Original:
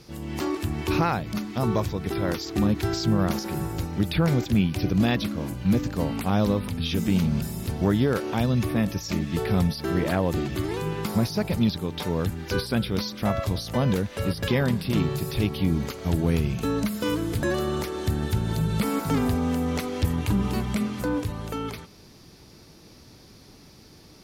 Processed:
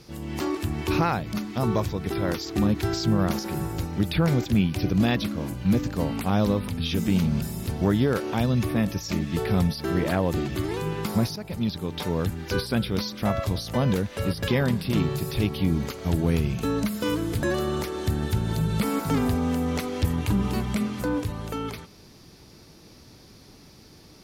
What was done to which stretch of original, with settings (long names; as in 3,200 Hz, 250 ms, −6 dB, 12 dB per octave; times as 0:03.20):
0:11.36–0:11.94: fade in, from −12.5 dB